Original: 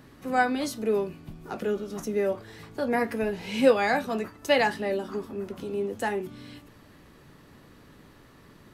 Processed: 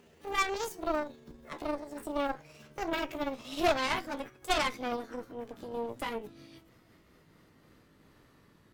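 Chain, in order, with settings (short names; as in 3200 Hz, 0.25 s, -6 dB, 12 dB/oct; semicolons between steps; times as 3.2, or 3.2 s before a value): gliding pitch shift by +8 st ending unshifted; added harmonics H 6 -11 dB, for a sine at -9.5 dBFS; gain -7.5 dB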